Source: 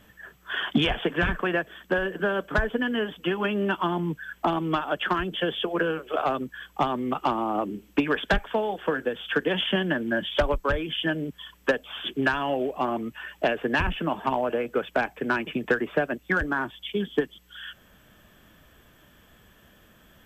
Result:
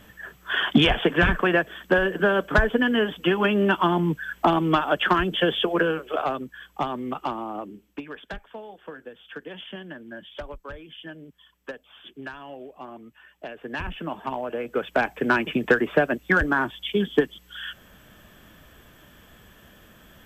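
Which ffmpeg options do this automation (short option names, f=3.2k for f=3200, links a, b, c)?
-af "volume=23dB,afade=t=out:st=5.56:d=0.86:silence=0.421697,afade=t=out:st=7.08:d=0.96:silence=0.281838,afade=t=in:st=13.49:d=0.5:silence=0.354813,afade=t=in:st=14.5:d=0.71:silence=0.354813"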